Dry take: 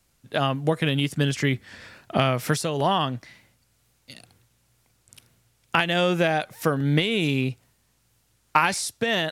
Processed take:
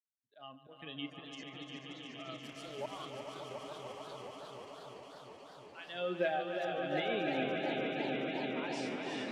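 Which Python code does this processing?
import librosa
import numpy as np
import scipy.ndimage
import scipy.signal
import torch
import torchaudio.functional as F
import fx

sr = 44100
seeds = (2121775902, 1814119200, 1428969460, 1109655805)

y = fx.bin_expand(x, sr, power=2.0)
y = fx.doubler(y, sr, ms=38.0, db=-13.5)
y = fx.auto_swell(y, sr, attack_ms=462.0)
y = scipy.signal.sosfilt(scipy.signal.butter(2, 310.0, 'highpass', fs=sr, output='sos'), y)
y = fx.env_lowpass_down(y, sr, base_hz=2900.0, full_db=-31.0)
y = fx.quant_dither(y, sr, seeds[0], bits=8, dither='none', at=(2.4, 3.02))
y = scipy.signal.sosfilt(scipy.signal.butter(2, 7900.0, 'lowpass', fs=sr, output='sos'), y)
y = fx.echo_swell(y, sr, ms=145, loudest=5, wet_db=-8.5)
y = fx.echo_warbled(y, sr, ms=354, feedback_pct=79, rate_hz=2.8, cents=95, wet_db=-7.5)
y = y * librosa.db_to_amplitude(-7.0)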